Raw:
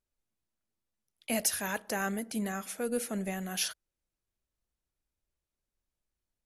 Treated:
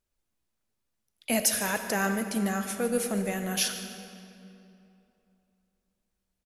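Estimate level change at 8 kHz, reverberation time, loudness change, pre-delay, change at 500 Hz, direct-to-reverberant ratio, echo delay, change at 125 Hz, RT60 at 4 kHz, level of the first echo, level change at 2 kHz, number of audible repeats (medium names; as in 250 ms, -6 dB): +5.0 dB, 2.8 s, +5.0 dB, 35 ms, +5.5 dB, 7.0 dB, 149 ms, +6.0 dB, 1.9 s, -16.5 dB, +5.5 dB, 1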